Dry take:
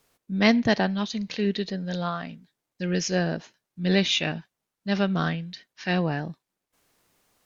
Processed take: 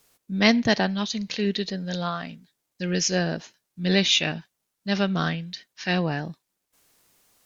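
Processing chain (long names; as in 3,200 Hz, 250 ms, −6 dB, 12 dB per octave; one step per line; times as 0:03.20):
high-shelf EQ 3,500 Hz +8 dB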